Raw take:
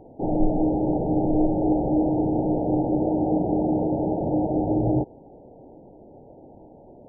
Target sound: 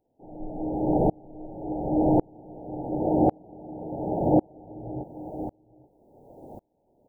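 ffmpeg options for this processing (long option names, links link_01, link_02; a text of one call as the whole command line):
ffmpeg -i in.wav -filter_complex "[0:a]crystalizer=i=8:c=0,asplit=2[link_01][link_02];[link_02]aecho=0:1:833:0.211[link_03];[link_01][link_03]amix=inputs=2:normalize=0,aeval=exprs='val(0)*pow(10,-36*if(lt(mod(-0.91*n/s,1),2*abs(-0.91)/1000),1-mod(-0.91*n/s,1)/(2*abs(-0.91)/1000),(mod(-0.91*n/s,1)-2*abs(-0.91)/1000)/(1-2*abs(-0.91)/1000))/20)':channel_layout=same,volume=5dB" out.wav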